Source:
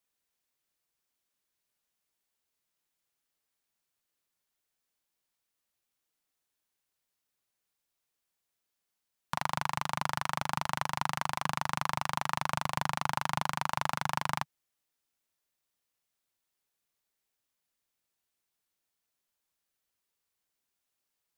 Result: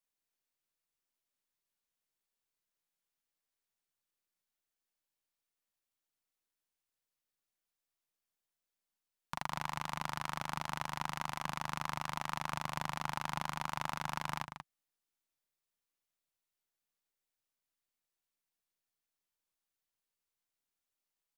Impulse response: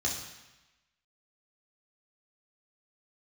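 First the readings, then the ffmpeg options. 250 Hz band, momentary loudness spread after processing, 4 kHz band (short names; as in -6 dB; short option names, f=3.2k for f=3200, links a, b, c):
-5.0 dB, 3 LU, -5.5 dB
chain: -filter_complex "[0:a]aeval=exprs='if(lt(val(0),0),0.708*val(0),val(0))':c=same,asplit=2[a][b];[b]adelay=186.6,volume=-8dB,highshelf=f=4k:g=-4.2[c];[a][c]amix=inputs=2:normalize=0,volume=-6dB"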